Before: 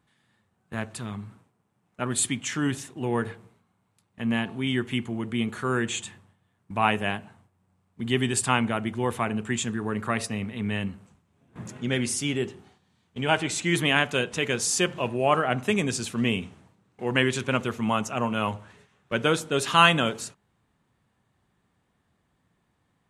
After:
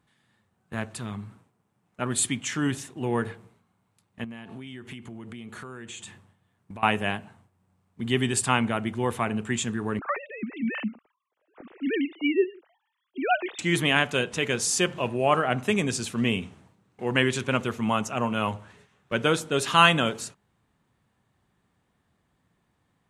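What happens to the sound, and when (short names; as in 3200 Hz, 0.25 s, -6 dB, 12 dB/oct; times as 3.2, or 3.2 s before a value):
4.24–6.83 compressor 12:1, threshold -36 dBFS
9.99–13.59 sine-wave speech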